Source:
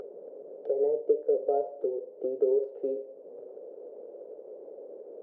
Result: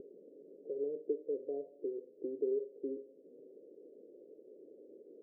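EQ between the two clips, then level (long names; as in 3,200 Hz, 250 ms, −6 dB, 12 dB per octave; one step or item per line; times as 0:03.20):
transistor ladder low-pass 360 Hz, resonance 45%
+2.0 dB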